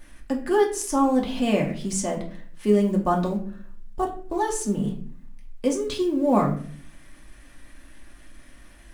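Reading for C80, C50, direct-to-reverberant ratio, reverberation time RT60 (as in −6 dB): 13.5 dB, 9.5 dB, −1.0 dB, 0.50 s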